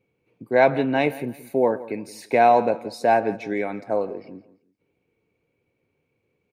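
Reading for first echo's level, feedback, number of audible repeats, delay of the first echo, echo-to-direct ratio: −17.5 dB, 30%, 2, 170 ms, −17.0 dB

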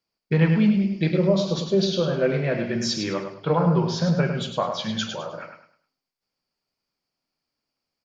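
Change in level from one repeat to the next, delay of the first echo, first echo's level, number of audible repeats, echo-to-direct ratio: −10.5 dB, 103 ms, −7.0 dB, 3, −6.5 dB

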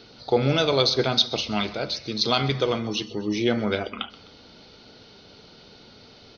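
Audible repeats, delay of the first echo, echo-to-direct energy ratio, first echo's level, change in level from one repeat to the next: 2, 128 ms, −18.5 dB, −19.5 dB, −5.5 dB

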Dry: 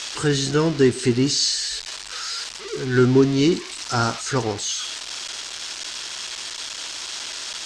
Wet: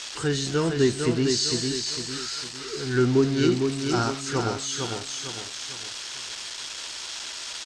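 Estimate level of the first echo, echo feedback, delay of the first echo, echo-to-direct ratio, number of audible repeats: −5.0 dB, 40%, 454 ms, −4.0 dB, 4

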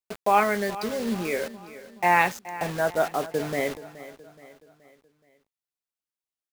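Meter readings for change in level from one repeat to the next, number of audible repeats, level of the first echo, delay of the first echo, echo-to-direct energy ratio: −6.5 dB, 3, −16.0 dB, 424 ms, −15.0 dB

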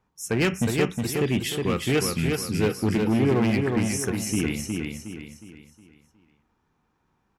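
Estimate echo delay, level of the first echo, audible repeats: 363 ms, −4.0 dB, 4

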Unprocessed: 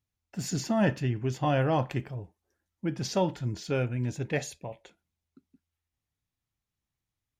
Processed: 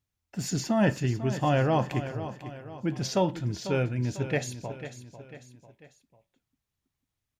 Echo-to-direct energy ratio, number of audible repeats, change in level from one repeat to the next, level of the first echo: −11.0 dB, 3, −6.5 dB, −12.0 dB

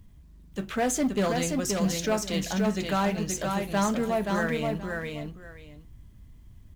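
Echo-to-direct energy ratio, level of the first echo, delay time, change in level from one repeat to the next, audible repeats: −4.0 dB, −4.0 dB, 526 ms, −13.5 dB, 2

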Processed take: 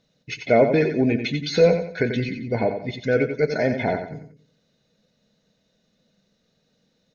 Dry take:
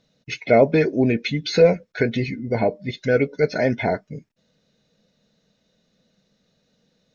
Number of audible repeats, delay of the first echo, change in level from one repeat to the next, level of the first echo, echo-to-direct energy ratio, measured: 4, 90 ms, −9.0 dB, −8.0 dB, −7.5 dB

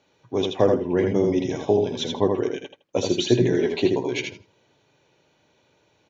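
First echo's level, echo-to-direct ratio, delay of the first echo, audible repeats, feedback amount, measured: −4.5 dB, −4.5 dB, 80 ms, 2, 16%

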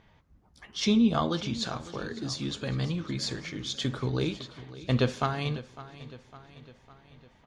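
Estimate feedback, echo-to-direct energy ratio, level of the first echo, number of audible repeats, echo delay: 54%, −15.0 dB, −16.5 dB, 4, 555 ms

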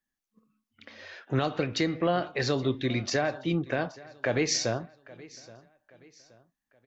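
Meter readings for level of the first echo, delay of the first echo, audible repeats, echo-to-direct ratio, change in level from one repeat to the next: −21.0 dB, 824 ms, 2, −20.5 dB, −8.0 dB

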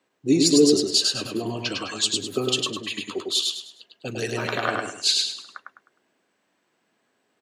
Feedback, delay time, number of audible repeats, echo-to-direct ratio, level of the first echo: 33%, 103 ms, 4, −2.5 dB, −3.0 dB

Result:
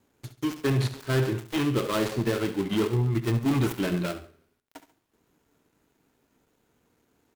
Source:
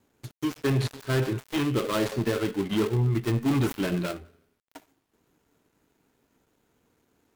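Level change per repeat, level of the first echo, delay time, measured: −9.0 dB, −13.0 dB, 69 ms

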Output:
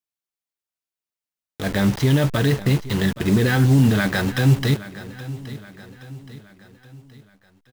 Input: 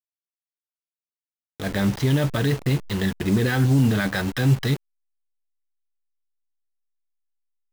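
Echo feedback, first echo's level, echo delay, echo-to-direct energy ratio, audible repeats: 48%, −16.0 dB, 822 ms, −15.0 dB, 3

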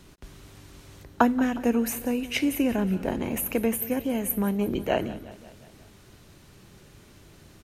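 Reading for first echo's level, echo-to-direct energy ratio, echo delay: −17.0 dB, −15.0 dB, 180 ms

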